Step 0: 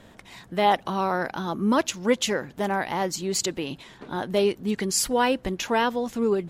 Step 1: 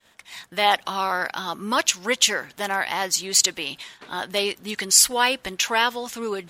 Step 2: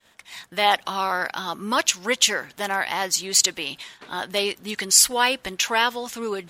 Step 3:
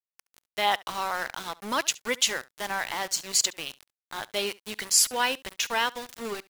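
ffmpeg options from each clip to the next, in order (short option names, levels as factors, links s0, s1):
-af "agate=range=0.0224:threshold=0.00708:ratio=3:detection=peak,tiltshelf=f=770:g=-10"
-af anull
-af "aeval=exprs='val(0)*gte(abs(val(0)),0.0398)':c=same,aecho=1:1:70:0.075,volume=0.531"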